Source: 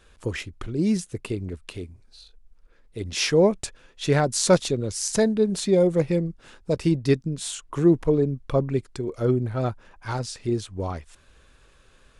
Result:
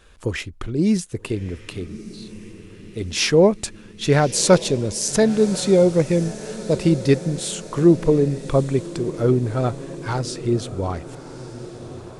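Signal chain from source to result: diffused feedback echo 1.203 s, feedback 57%, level -15 dB; gain +4 dB

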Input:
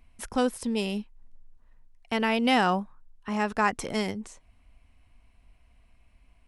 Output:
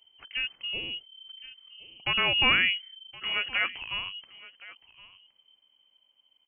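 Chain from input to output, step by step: Doppler pass-by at 2.41, 11 m/s, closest 11 m; echo 1.068 s -19.5 dB; inverted band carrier 3100 Hz

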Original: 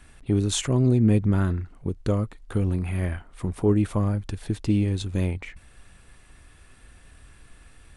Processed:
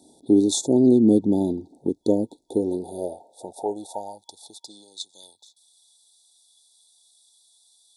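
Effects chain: FFT band-reject 930–3400 Hz; 4.66–5.23 Chebyshev band-pass 130–8700 Hz, order 3; high-pass sweep 290 Hz -> 2500 Hz, 2.36–5.49; gain +2.5 dB

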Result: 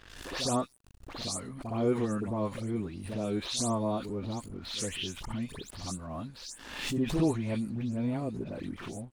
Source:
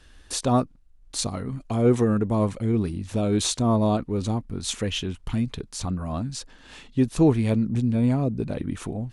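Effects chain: spectral delay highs late, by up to 0.158 s; low shelf 210 Hz -7 dB; crossover distortion -54.5 dBFS; reverse echo 63 ms -16 dB; backwards sustainer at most 59 dB/s; gain -6.5 dB

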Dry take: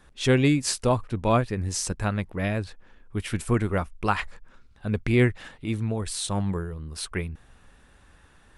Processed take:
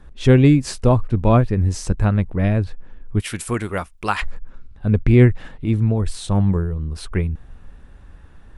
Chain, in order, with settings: tilt -2.5 dB/oct, from 3.19 s +1.5 dB/oct, from 4.21 s -2.5 dB/oct; gain +3 dB

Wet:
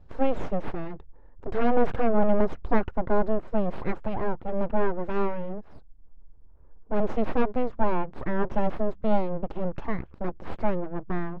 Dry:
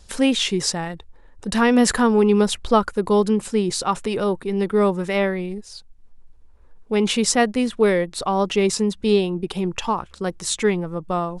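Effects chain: full-wave rectifier; Bessel low-pass 860 Hz, order 2; gain -1 dB

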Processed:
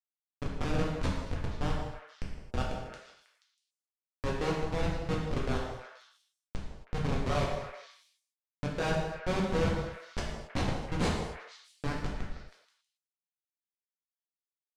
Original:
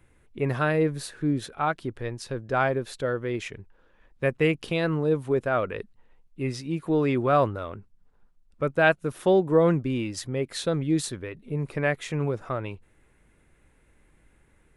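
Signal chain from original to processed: pre-emphasis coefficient 0.8; notches 60/120/180/240/300/360/420/480 Hz; in parallel at -1.5 dB: limiter -28 dBFS, peak gain reduction 11 dB; on the sum: Schmitt trigger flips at -25.5 dBFS; air absorption 87 m; on a send: delay with a stepping band-pass 0.16 s, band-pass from 650 Hz, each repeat 1.4 oct, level -6 dB; on the sum: non-linear reverb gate 0.3 s falling, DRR -3.5 dB; gain +5 dB

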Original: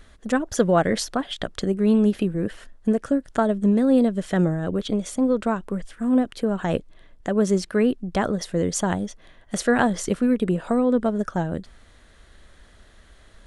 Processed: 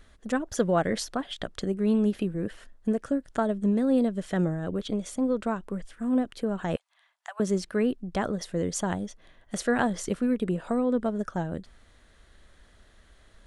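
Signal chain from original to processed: 6.76–7.4 steep high-pass 750 Hz 48 dB/oct; gain -5.5 dB

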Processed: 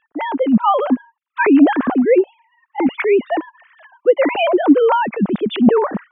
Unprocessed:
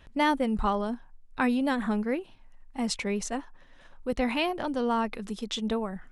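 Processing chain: sine-wave speech; de-esser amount 90%; LPF 1600 Hz 6 dB/oct; AGC gain up to 15 dB; gain +1.5 dB

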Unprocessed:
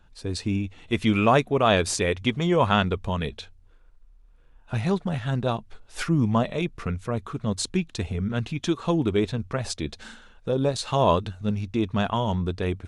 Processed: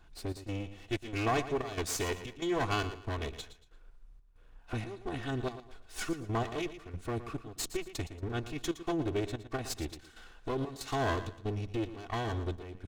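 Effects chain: minimum comb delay 2.7 ms; dynamic EQ 6700 Hz, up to +5 dB, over -51 dBFS, Q 3; compressor 1.5:1, threshold -45 dBFS, peak gain reduction 10.5 dB; step gate "xx.xxx.x" 93 bpm -12 dB; feedback echo 0.115 s, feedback 30%, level -13 dB

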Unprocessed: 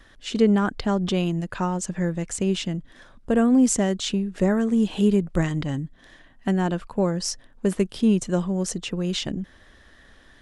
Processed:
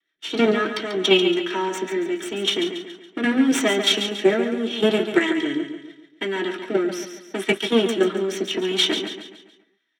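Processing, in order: minimum comb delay 3.2 ms; weighting filter D; gate -43 dBFS, range -23 dB; bell 3200 Hz +2.5 dB 0.33 oct; level quantiser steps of 10 dB; transient shaper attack +3 dB, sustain +7 dB; rotary speaker horn 7.5 Hz, later 0.8 Hz, at 0.62; feedback echo 0.146 s, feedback 43%, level -8.5 dB; reverb RT60 0.15 s, pre-delay 3 ms, DRR 1 dB; speed mistake 24 fps film run at 25 fps; gain -3 dB

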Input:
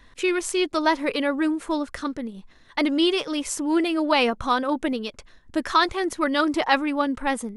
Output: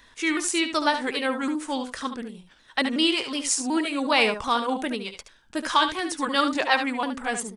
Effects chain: repeated pitch sweeps -3 st, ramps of 0.37 s; tilt +2 dB/oct; on a send: echo 72 ms -9 dB

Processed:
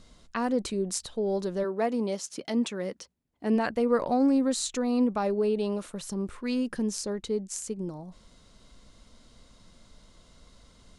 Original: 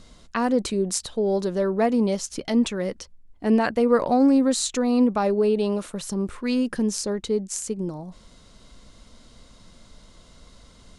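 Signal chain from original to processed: 1.63–3.55 HPF 270 Hz -> 110 Hz 12 dB/oct; gain -5.5 dB

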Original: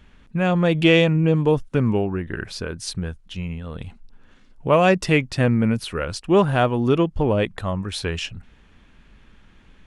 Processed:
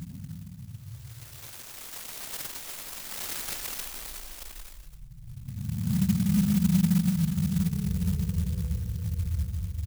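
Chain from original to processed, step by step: spectral contrast raised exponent 3.1; comb 0.9 ms, depth 80%; treble ducked by the level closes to 800 Hz, closed at -15.5 dBFS; small resonant body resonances 260/430 Hz, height 12 dB, ringing for 35 ms; Paulstretch 29×, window 0.05 s, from 2.77; reverb RT60 0.50 s, pre-delay 98 ms, DRR 6 dB; clock jitter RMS 0.13 ms; gain -7.5 dB

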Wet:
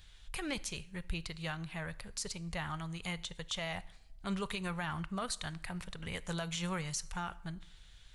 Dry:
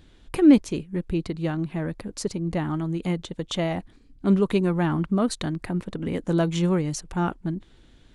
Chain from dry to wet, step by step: passive tone stack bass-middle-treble 10-0-10; limiter -30.5 dBFS, peak gain reduction 10 dB; on a send: reverb RT60 0.85 s, pre-delay 13 ms, DRR 17.5 dB; on the sum: gain +3.5 dB

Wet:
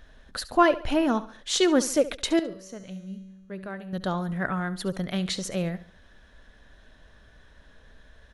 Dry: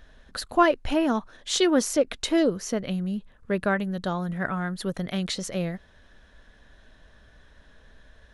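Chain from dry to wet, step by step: 2.39–3.93 resonator 190 Hz, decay 1.4 s, mix 80%; feedback echo 70 ms, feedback 39%, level -16 dB

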